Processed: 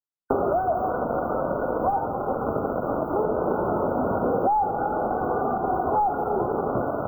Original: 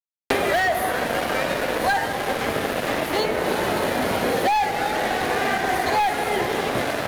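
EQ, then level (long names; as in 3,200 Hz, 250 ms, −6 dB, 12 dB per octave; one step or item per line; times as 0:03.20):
linear-phase brick-wall band-stop 1,500–14,000 Hz
high-shelf EQ 2,200 Hz −10.5 dB
0.0 dB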